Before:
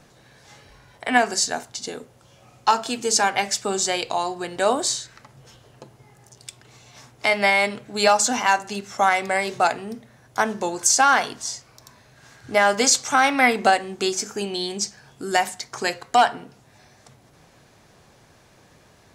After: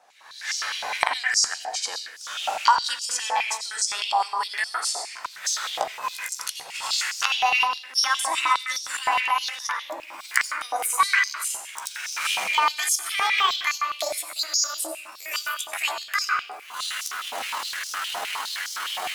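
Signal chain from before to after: pitch bend over the whole clip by +10.5 st starting unshifted; recorder AGC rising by 50 dB/s; dynamic bell 4.5 kHz, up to +3 dB, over -35 dBFS, Q 0.71; on a send at -3.5 dB: reverberation RT60 0.85 s, pre-delay 76 ms; on the sum: step-sequenced high-pass 9.7 Hz 760–5400 Hz; trim -9.5 dB

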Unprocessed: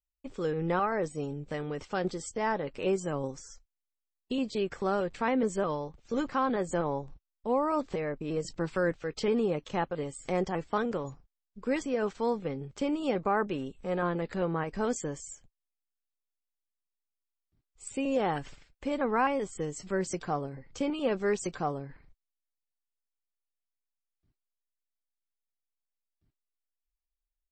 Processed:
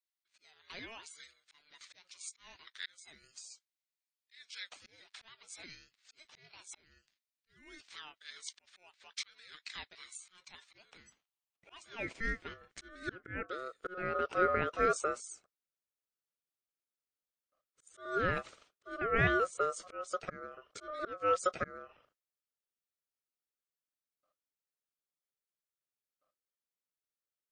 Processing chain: slow attack 426 ms; high-pass sweep 3 kHz -> 350 Hz, 10.58–14.18 s; ring modulator 910 Hz

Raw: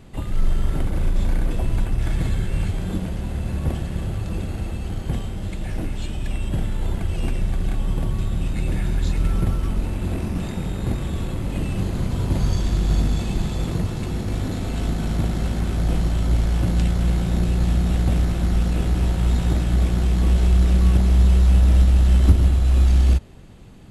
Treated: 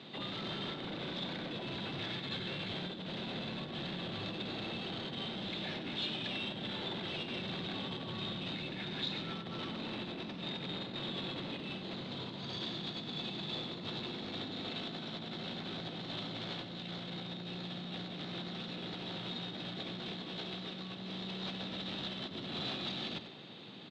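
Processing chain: Bessel high-pass 230 Hz, order 8; compressor with a negative ratio -36 dBFS, ratio -1; saturation -33 dBFS, distortion -13 dB; four-pole ladder low-pass 4 kHz, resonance 75%; delay 96 ms -11 dB; trim +7.5 dB

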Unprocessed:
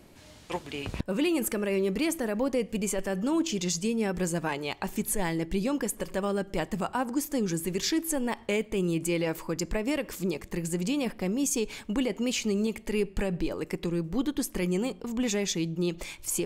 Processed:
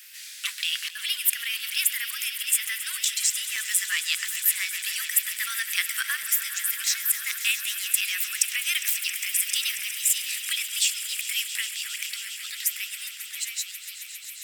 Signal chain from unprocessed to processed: fade out at the end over 4.90 s; steep high-pass 1.4 kHz 48 dB/octave; treble shelf 10 kHz +11.5 dB; gain riding within 5 dB 0.5 s; echo with a slow build-up 154 ms, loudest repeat 5, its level -14.5 dB; tape speed +14%; crackling interface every 0.89 s, samples 128, zero, from 0.89 s; trim +8 dB

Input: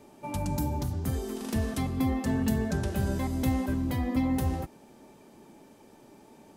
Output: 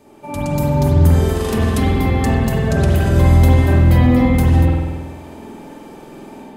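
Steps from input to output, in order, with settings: band-stop 5.7 kHz, Q 26; de-hum 64.49 Hz, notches 6; peak limiter -24 dBFS, peak gain reduction 7 dB; level rider gain up to 8.5 dB; spring tank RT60 1.3 s, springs 48 ms, chirp 55 ms, DRR -5 dB; trim +3.5 dB

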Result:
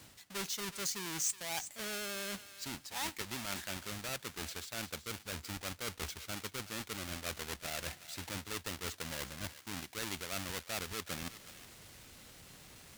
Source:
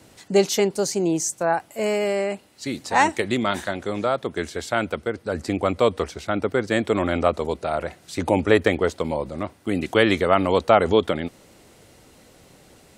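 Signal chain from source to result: square wave that keeps the level; reverse; compression 6:1, threshold -29 dBFS, peak gain reduction 20.5 dB; reverse; vibrato 9.6 Hz 23 cents; amplifier tone stack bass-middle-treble 5-5-5; thinning echo 370 ms, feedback 27%, high-pass 1.2 kHz, level -12 dB; trim +4 dB

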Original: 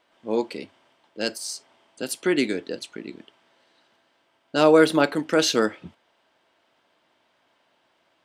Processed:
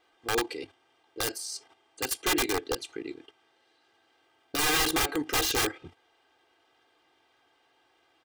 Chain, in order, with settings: level held to a coarse grid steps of 10 dB; integer overflow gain 22.5 dB; comb 2.5 ms, depth 90%

